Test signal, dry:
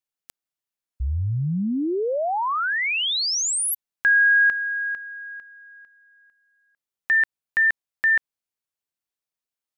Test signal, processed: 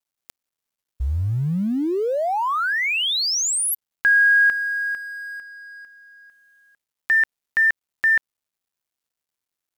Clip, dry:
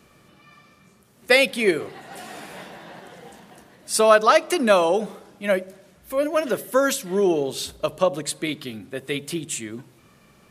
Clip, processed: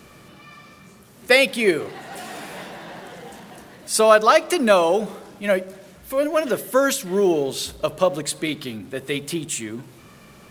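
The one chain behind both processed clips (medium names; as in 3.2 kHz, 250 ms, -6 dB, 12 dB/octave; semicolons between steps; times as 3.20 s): companding laws mixed up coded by mu; trim +1 dB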